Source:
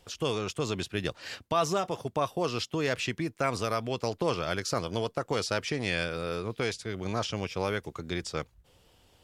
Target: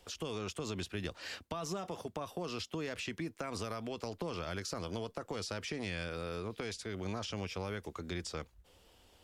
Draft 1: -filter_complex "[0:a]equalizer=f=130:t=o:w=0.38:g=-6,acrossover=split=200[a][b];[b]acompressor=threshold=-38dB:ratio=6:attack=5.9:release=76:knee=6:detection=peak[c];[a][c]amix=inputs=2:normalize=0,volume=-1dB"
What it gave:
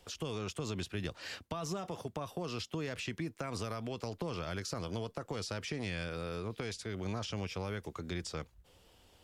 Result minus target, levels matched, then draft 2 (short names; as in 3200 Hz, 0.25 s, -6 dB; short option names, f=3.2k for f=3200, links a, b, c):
125 Hz band +2.5 dB
-filter_complex "[0:a]equalizer=f=130:t=o:w=0.38:g=-15.5,acrossover=split=200[a][b];[b]acompressor=threshold=-38dB:ratio=6:attack=5.9:release=76:knee=6:detection=peak[c];[a][c]amix=inputs=2:normalize=0,volume=-1dB"